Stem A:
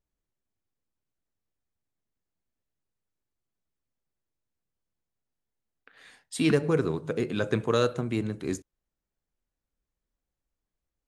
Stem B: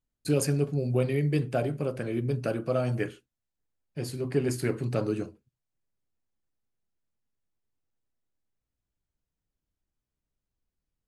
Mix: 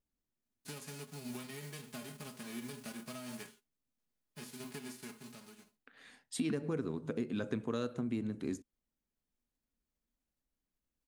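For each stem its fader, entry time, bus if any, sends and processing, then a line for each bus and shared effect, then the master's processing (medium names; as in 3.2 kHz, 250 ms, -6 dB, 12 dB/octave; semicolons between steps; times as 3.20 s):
-5.0 dB, 0.00 s, no send, none
-17.0 dB, 0.40 s, no send, formants flattened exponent 0.3; comb 4.8 ms, depth 68%; compression 10:1, threshold -27 dBFS, peak gain reduction 10.5 dB; auto duck -16 dB, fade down 0.95 s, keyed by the first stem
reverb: none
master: peaking EQ 240 Hz +10.5 dB 0.53 oct; compression 3:1, threshold -35 dBFS, peak gain reduction 11.5 dB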